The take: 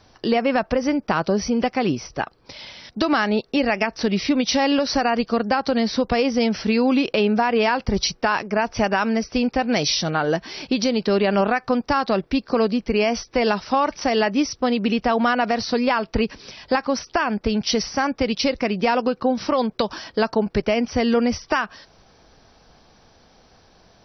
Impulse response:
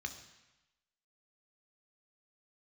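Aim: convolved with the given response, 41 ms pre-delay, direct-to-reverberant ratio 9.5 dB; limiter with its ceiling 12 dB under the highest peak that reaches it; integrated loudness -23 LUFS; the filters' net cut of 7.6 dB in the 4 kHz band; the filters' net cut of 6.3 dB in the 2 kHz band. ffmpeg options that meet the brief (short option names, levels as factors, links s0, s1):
-filter_complex "[0:a]equalizer=f=2000:t=o:g=-6.5,equalizer=f=4000:t=o:g=-8.5,alimiter=limit=0.126:level=0:latency=1,asplit=2[s0][s1];[1:a]atrim=start_sample=2205,adelay=41[s2];[s1][s2]afir=irnorm=-1:irlink=0,volume=0.355[s3];[s0][s3]amix=inputs=2:normalize=0,volume=1.68"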